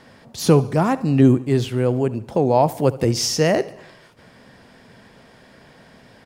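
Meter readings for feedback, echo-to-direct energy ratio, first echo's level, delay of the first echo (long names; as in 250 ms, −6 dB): 51%, −17.5 dB, −19.0 dB, 72 ms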